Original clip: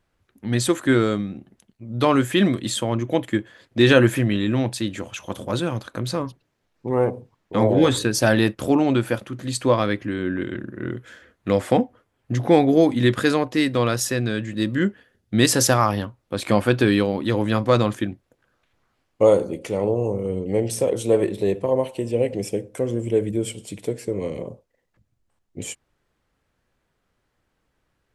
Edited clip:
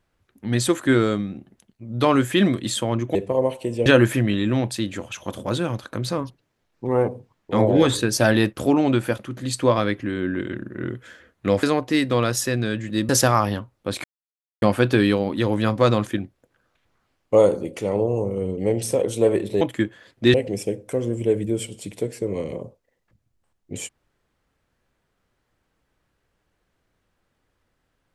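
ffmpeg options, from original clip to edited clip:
-filter_complex "[0:a]asplit=8[a][b][c][d][e][f][g][h];[a]atrim=end=3.152[i];[b]atrim=start=21.488:end=22.202[j];[c]atrim=start=3.878:end=11.652[k];[d]atrim=start=13.268:end=14.732[l];[e]atrim=start=15.548:end=16.5,asetpts=PTS-STARTPTS,afade=t=out:st=0.948:d=0.004:c=hsin,apad=pad_dur=0.58[m];[f]atrim=start=16.5:end=21.492,asetpts=PTS-STARTPTS,afade=t=in:d=0.004:c=hsin[n];[g]atrim=start=3.148:end=3.882[o];[h]atrim=start=22.198[p];[i][j]acrossfade=d=0.004:c1=hsin:c2=hsin[q];[q][k]acrossfade=d=0.004:c1=hsin:c2=hsin[r];[r][l]acrossfade=d=0.004:c1=hsin:c2=hsin[s];[m][n]concat=n=2:v=0:a=1[t];[s][t]acrossfade=d=0.004:c1=hsin:c2=hsin[u];[u][o]acrossfade=d=0.004:c1=hsin:c2=hsin[v];[v][p]acrossfade=d=0.004:c1=hsin:c2=hsin"

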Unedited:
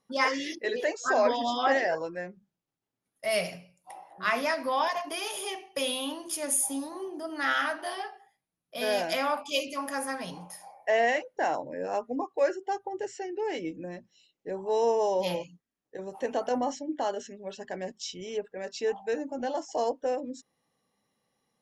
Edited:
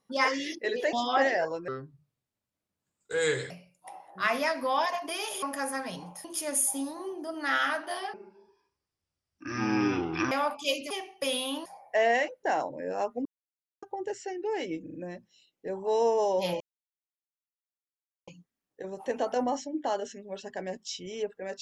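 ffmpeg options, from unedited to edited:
-filter_complex "[0:a]asplit=16[a][b][c][d][e][f][g][h][i][j][k][l][m][n][o][p];[a]atrim=end=0.932[q];[b]atrim=start=1.428:end=2.184[r];[c]atrim=start=2.18:end=3.53,asetpts=PTS-STARTPTS,asetrate=32634,aresample=44100[s];[d]atrim=start=3.526:end=5.452[t];[e]atrim=start=9.768:end=10.592[u];[f]atrim=start=6.198:end=8.094[v];[g]atrim=start=8.09:end=9.18,asetpts=PTS-STARTPTS,asetrate=22050,aresample=44100[w];[h]atrim=start=9.176:end=9.772[x];[i]atrim=start=5.448:end=6.202[y];[j]atrim=start=10.588:end=12.19,asetpts=PTS-STARTPTS,afade=t=out:st=1.598:d=0.004:c=hsin[z];[k]atrim=start=12.19:end=12.76,asetpts=PTS-STARTPTS,volume=0[aa];[l]atrim=start=12.76:end=13.802,asetpts=PTS-STARTPTS,afade=t=in:d=0.004:c=hsin[ab];[m]atrim=start=13.758:end=13.802[ac];[n]atrim=start=13.758:end=13.802[ad];[o]atrim=start=13.758:end=15.42,asetpts=PTS-STARTPTS,afade=t=out:st=1.658:d=0.004:c=hsin,apad=pad_dur=1.67[ae];[p]atrim=start=15.42,asetpts=PTS-STARTPTS,afade=t=in:d=0.004:c=hsin[af];[q][r]acrossfade=d=0.004:c1=hsin:c2=hsin[ag];[ag][s]acrossfade=d=0.004:c1=hsin:c2=hsin[ah];[ah][t]acrossfade=d=0.004:c1=hsin:c2=hsin[ai];[ai][u]acrossfade=d=0.004:c1=hsin:c2=hsin[aj];[aj][v]acrossfade=d=0.004:c1=hsin:c2=hsin[ak];[ak][w]acrossfade=d=0.004:c1=hsin:c2=hsin[al];[al][x]acrossfade=d=0.004:c1=hsin:c2=hsin[am];[am][y]acrossfade=d=0.004:c1=hsin:c2=hsin[an];[z][aa][ab]concat=n=3:v=0:a=1[ao];[an][ao]acrossfade=d=0.004:c1=hsin:c2=hsin[ap];[ap][ac]acrossfade=d=0.004:c1=hsin:c2=hsin[aq];[aq][ad]acrossfade=d=0.004:c1=hsin:c2=hsin[ar];[ae][af]concat=n=2:v=0:a=1[as];[ar][as]acrossfade=d=0.004:c1=hsin:c2=hsin"

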